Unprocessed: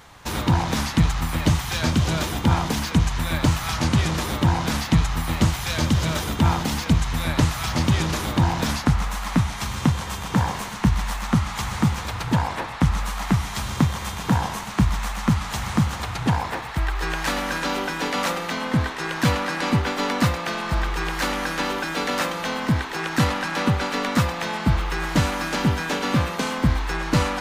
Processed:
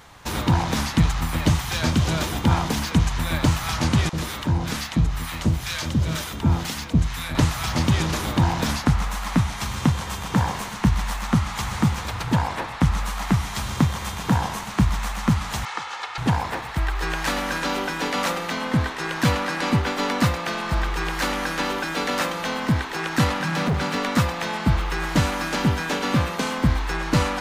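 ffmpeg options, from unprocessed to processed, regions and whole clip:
-filter_complex "[0:a]asettb=1/sr,asplit=3[a][b][c];[a]atrim=end=4.094[d];[b]atrim=start=4.09:end=7.35,asetpts=PTS-STARTPTS,afade=t=in:d=0.004:c=qsin,afade=t=out:st=3.256:d=0.004:c=qsin,acrossover=split=770[e][f];[e]aeval=exprs='val(0)*(1-0.7/2+0.7/2*cos(2*PI*2.1*n/s))':c=same[g];[f]aeval=exprs='val(0)*(1-0.7/2-0.7/2*cos(2*PI*2.1*n/s))':c=same[h];[g][h]amix=inputs=2:normalize=0,acrossover=split=800[i][j];[i]adelay=40[k];[k][j]amix=inputs=2:normalize=0,atrim=end_sample=143766[l];[c]atrim=start=7.346[m];[d][l]acrossfade=d=0.004:c1=hsin:c2=qsin[n];[n][m]acrossfade=d=0.004:c1=qsin:c2=hsin,asettb=1/sr,asplit=3[o][p][q];[o]atrim=end=15.654[r];[p]atrim=start=15.65:end=16.18,asetpts=PTS-STARTPTS,afade=t=in:d=0.004:c=qsin,afade=t=out:st=0.526:d=0.004:c=qsin,highpass=760,lowpass=5k,aecho=1:1:2.3:0.49,atrim=end_sample=23373[s];[q]atrim=start=16.176[t];[r][s]acrossfade=d=0.004:c1=hsin:c2=qsin[u];[u][t]acrossfade=d=0.004:c1=qsin:c2=hsin,asettb=1/sr,asplit=3[v][w][x];[v]atrim=end=23.404[y];[w]atrim=start=23.4:end=23.98,asetpts=PTS-STARTPTS,afade=t=in:d=0.004:c=qsin,afade=t=out:st=0.576:d=0.004:c=qsin,highpass=42,equalizer=f=150:w=2.5:g=14.5,volume=19dB,asoftclip=hard,volume=-19dB[z];[x]atrim=start=23.976[aa];[y][z]acrossfade=d=0.004:c1=hsin:c2=qsin[ab];[ab][aa]acrossfade=d=0.004:c1=qsin:c2=hsin"

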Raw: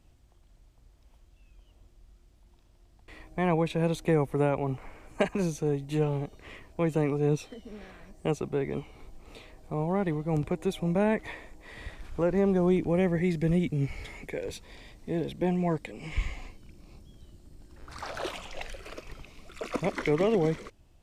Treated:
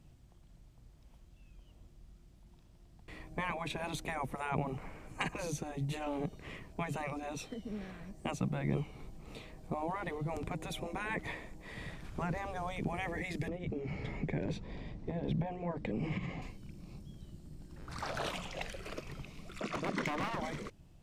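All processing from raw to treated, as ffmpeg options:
-filter_complex "[0:a]asettb=1/sr,asplit=3[a][b][c];[a]atrim=end=13.484[d];[b]atrim=start=13.48:end=16.42,asetpts=PTS-STARTPTS,afade=t=in:d=0.004:c=qsin,afade=t=out:st=2.936:d=0.004:c=qsin,lowpass=5.5k,acompressor=threshold=-29dB:ratio=10:attack=3.2:release=140:knee=1:detection=peak,tiltshelf=f=1.5k:g=6[e];[c]atrim=start=16.416[f];[d][e]acrossfade=d=0.004:c1=hsin:c2=qsin[g];[g][f]acrossfade=d=0.004:c1=qsin:c2=hsin,asettb=1/sr,asplit=3[h][i][j];[h]atrim=end=19.604[k];[i]atrim=start=19.6:end=20.4,asetpts=PTS-STARTPTS,afade=t=in:d=0.004:c=qsin,afade=t=out:st=0.796:d=0.004:c=qsin,lowpass=7.6k,lowshelf=f=120:t=q:w=3:g=-8.5,volume=26dB,asoftclip=hard,volume=-26dB[l];[j]atrim=start=20.396[m];[k][l]acrossfade=d=0.004:c1=hsin:c2=qsin[n];[n][m]acrossfade=d=0.004:c1=qsin:c2=hsin,afftfilt=real='re*lt(hypot(re,im),0.158)':imag='im*lt(hypot(re,im),0.158)':win_size=1024:overlap=0.75,equalizer=f=160:t=o:w=0.96:g=10.5,volume=-1.5dB"

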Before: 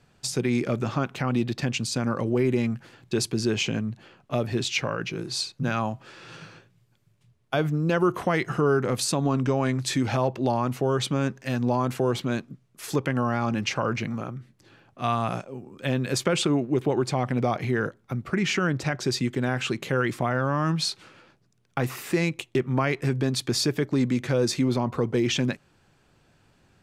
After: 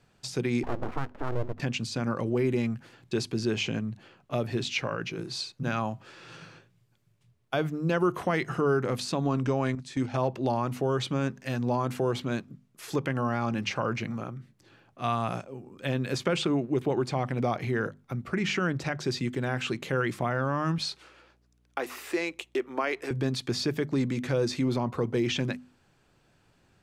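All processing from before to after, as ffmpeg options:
-filter_complex "[0:a]asettb=1/sr,asplit=3[a][b][c];[a]atrim=end=0.634[d];[b]atrim=start=0.63:end=1.6,asetpts=PTS-STARTPTS,afade=t=in:d=0.004:c=qsin,afade=t=out:st=0.966:d=0.004:c=qsin,lowpass=f=1.2k:w=0.5412,lowpass=f=1.2k:w=1.3066,aeval=exprs='abs(val(0))':c=same[e];[c]atrim=start=1.596[f];[d][e]acrossfade=d=0.004:c1=hsin:c2=qsin[g];[g][f]acrossfade=d=0.004:c1=qsin:c2=hsin,asettb=1/sr,asplit=3[h][i][j];[h]atrim=end=9.754[k];[i]atrim=start=9.75:end=10.23,asetpts=PTS-STARTPTS,afade=t=in:d=0.004:c=qsin,afade=t=out:st=0.476:d=0.004:c=qsin,lowpass=f=10k:w=0.5412,lowpass=f=10k:w=1.3066,agate=range=-12dB:threshold=-26dB:ratio=16:release=100:detection=peak[l];[j]atrim=start=10.226[m];[k][l]acrossfade=d=0.004:c1=hsin:c2=qsin[n];[n][m]acrossfade=d=0.004:c1=qsin:c2=hsin,asettb=1/sr,asplit=3[o][p][q];[o]atrim=end=20.784[r];[p]atrim=start=20.78:end=23.11,asetpts=PTS-STARTPTS,afade=t=in:d=0.004:c=qsin,afade=t=out:st=2.326:d=0.004:c=qsin,highpass=f=310:w=0.5412,highpass=f=310:w=1.3066,aeval=exprs='val(0)+0.000708*(sin(2*PI*60*n/s)+sin(2*PI*2*60*n/s)/2+sin(2*PI*3*60*n/s)/3+sin(2*PI*4*60*n/s)/4+sin(2*PI*5*60*n/s)/5)':c=same[s];[q]atrim=start=23.106[t];[r][s]acrossfade=d=0.004:c1=hsin:c2=qsin[u];[u][t]acrossfade=d=0.004:c1=qsin:c2=hsin,acrossover=split=5200[v][w];[w]acompressor=threshold=-41dB:ratio=4:attack=1:release=60[x];[v][x]amix=inputs=2:normalize=0,bandreject=f=50:t=h:w=6,bandreject=f=100:t=h:w=6,bandreject=f=150:t=h:w=6,bandreject=f=200:t=h:w=6,bandreject=f=250:t=h:w=6,volume=-3dB"

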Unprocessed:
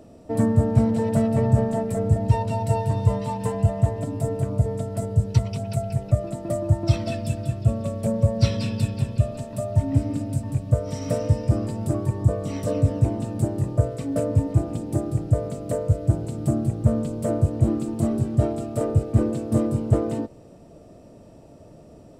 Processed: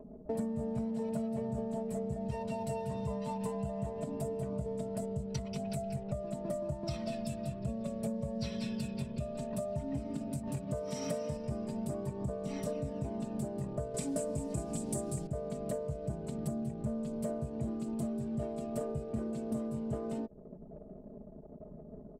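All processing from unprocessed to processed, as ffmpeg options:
-filter_complex "[0:a]asettb=1/sr,asplit=3[a][b][c];[a]atrim=end=10.474[d];[b]atrim=start=10.47:end=11.37,asetpts=PTS-STARTPTS,afade=t=in:d=0.004:c=qsin,afade=t=out:st=0.896:d=0.004:c=qsin,highpass=58,lowshelf=f=330:g=-5,acontrast=24[e];[c]atrim=start=11.366[f];[d][e]acrossfade=d=0.004:c1=hsin:c2=qsin[g];[g][f]acrossfade=d=0.004:c1=qsin:c2=hsin,asettb=1/sr,asplit=3[h][i][j];[h]atrim=end=13.944[k];[i]atrim=start=13.94:end=15.27,asetpts=PTS-STARTPTS,afade=t=in:d=0.004:c=qsin,afade=t=out:st=1.326:d=0.004:c=qsin,equalizer=f=8.3k:t=o:w=1.3:g=13.5,acontrast=69,bandreject=f=1.3k:w=16[l];[j]atrim=start=15.266[m];[k][l]acrossfade=d=0.004:c1=hsin:c2=qsin[n];[n][m]acrossfade=d=0.004:c1=qsin:c2=hsin,anlmdn=0.1,aecho=1:1:4.8:0.9,acompressor=threshold=-33dB:ratio=6,volume=-1.5dB"

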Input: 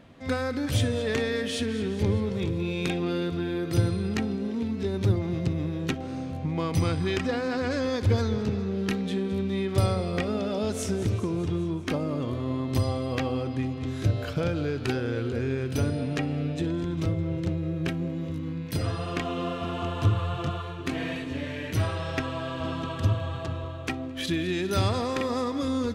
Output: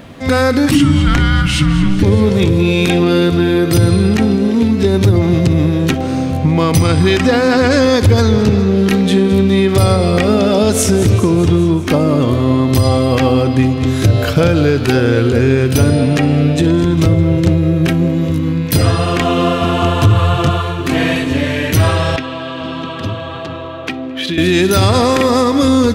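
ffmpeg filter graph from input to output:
-filter_complex "[0:a]asettb=1/sr,asplit=3[a][b][c];[a]atrim=end=0.714[d];[b]atrim=start=0.71:end=2.03,asetpts=PTS-STARTPTS,afade=t=in:d=0.004:c=qsin,afade=t=out:st=1.316:d=0.004:c=qsin,aemphasis=mode=reproduction:type=cd,afreqshift=-390[e];[c]atrim=start=2.026[f];[d][e]acrossfade=d=0.004:c1=hsin:c2=qsin[g];[g][f]acrossfade=d=0.004:c1=qsin:c2=hsin,asettb=1/sr,asplit=3[h][i][j];[h]atrim=end=22.164[k];[i]atrim=start=22.16:end=24.38,asetpts=PTS-STARTPTS,afade=t=in:d=0.004:c=qsin,afade=t=out:st=2.216:d=0.004:c=qsin,acrossover=split=200 3900:gain=0.1 1 0.112[l][m][n];[l][m][n]amix=inputs=3:normalize=0,acrossover=split=210|3000[o][p][q];[p]acompressor=threshold=-41dB:ratio=4:attack=3.2:release=140:knee=2.83:detection=peak[r];[o][r][q]amix=inputs=3:normalize=0[s];[j]atrim=start=24.376[t];[k][s]acrossfade=d=0.004:c1=hsin:c2=qsin[u];[u][t]acrossfade=d=0.004:c1=qsin:c2=hsin,highshelf=f=9.8k:g=10,alimiter=level_in=18dB:limit=-1dB:release=50:level=0:latency=1,volume=-1dB"

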